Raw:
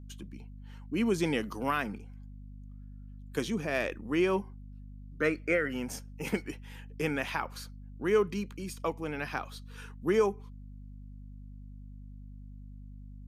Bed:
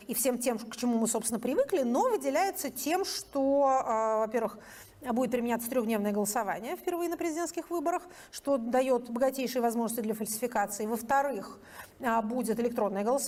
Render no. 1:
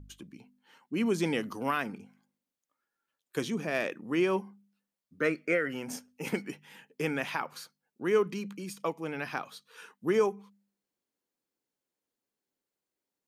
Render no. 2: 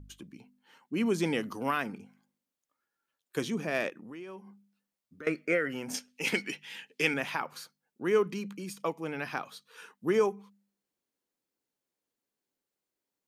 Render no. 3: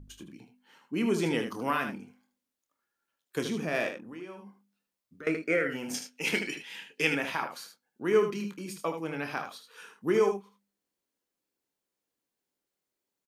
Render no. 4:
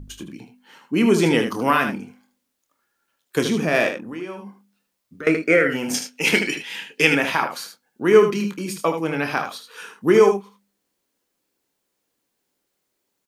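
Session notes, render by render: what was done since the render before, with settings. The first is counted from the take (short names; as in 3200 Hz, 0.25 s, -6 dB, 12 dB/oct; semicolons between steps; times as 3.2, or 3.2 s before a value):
de-hum 50 Hz, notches 5
3.89–5.27 compressor 4:1, threshold -44 dBFS; 5.94–7.14 weighting filter D
doubler 25 ms -11 dB; early reflections 28 ms -12 dB, 77 ms -8 dB
gain +11 dB; limiter -1 dBFS, peak gain reduction 1.5 dB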